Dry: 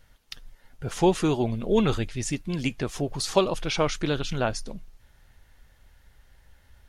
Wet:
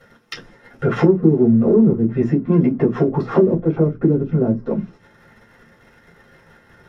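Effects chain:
mains-hum notches 60/120/180/240 Hz
treble cut that deepens with the level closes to 310 Hz, closed at −23 dBFS
leveller curve on the samples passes 1
downward compressor 6 to 1, threshold −28 dBFS, peak gain reduction 9.5 dB
convolution reverb RT60 0.15 s, pre-delay 3 ms, DRR −4 dB

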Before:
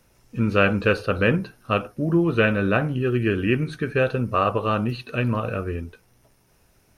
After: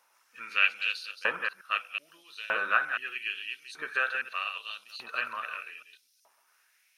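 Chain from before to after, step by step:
delay that plays each chunk backwards 124 ms, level −5 dB
auto-filter high-pass saw up 0.8 Hz 890–5,300 Hz
level −5.5 dB

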